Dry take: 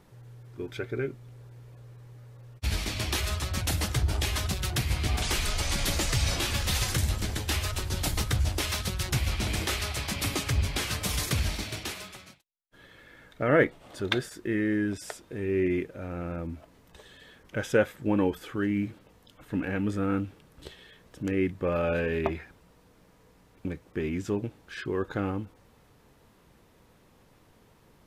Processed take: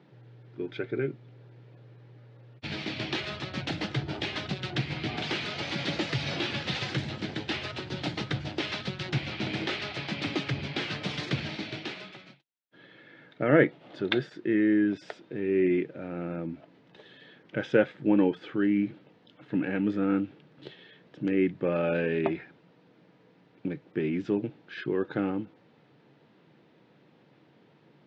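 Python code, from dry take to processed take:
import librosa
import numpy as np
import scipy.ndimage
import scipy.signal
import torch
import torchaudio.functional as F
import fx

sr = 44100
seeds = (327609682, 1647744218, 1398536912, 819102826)

y = fx.cabinet(x, sr, low_hz=140.0, low_slope=24, high_hz=4100.0, hz=(140.0, 320.0, 1100.0), db=(6, 5, -6))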